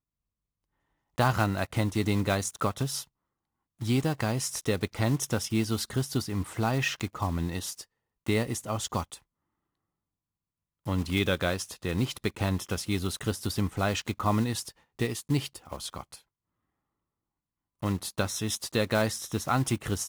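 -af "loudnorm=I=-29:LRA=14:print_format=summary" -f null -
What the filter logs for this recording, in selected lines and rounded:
Input Integrated:    -29.9 LUFS
Input True Peak:     -10.7 dBTP
Input LRA:             4.2 LU
Input Threshold:     -40.2 LUFS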